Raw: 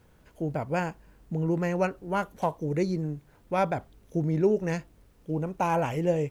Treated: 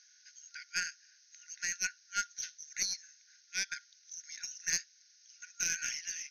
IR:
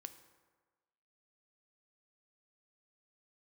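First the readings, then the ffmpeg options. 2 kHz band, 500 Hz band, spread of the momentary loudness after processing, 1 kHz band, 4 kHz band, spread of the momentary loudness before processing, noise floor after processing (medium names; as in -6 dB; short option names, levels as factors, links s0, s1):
0.0 dB, -39.0 dB, 18 LU, -18.0 dB, +10.0 dB, 10 LU, -65 dBFS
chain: -af "afftfilt=real='re*between(b*sr/4096,1400,6600)':imag='im*between(b*sr/4096,1400,6600)':win_size=4096:overlap=0.75,aexciter=amount=8:drive=7.7:freq=4600,aeval=exprs='0.178*(cos(1*acos(clip(val(0)/0.178,-1,1)))-cos(1*PI/2))+0.01*(cos(4*acos(clip(val(0)/0.178,-1,1)))-cos(4*PI/2))':c=same"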